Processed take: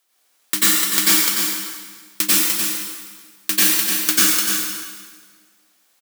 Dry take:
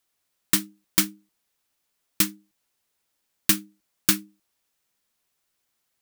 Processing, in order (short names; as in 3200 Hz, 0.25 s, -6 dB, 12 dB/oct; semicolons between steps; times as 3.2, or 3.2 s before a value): HPF 350 Hz 12 dB/oct; compressor 2:1, threshold -23 dBFS, peak gain reduction 5.5 dB; on a send: echo 0.298 s -7 dB; on the sum: plate-style reverb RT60 1.6 s, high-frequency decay 0.9×, pre-delay 80 ms, DRR -6.5 dB; maximiser +8.5 dB; gain -1 dB